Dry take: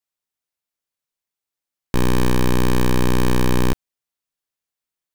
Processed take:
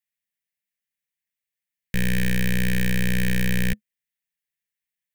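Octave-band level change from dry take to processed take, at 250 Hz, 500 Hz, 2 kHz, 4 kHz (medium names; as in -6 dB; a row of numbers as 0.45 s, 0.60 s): -5.0 dB, -12.5 dB, +2.0 dB, -3.0 dB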